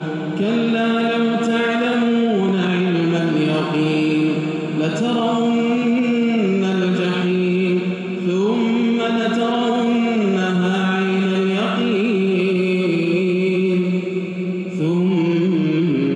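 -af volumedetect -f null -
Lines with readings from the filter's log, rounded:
mean_volume: -17.7 dB
max_volume: -7.3 dB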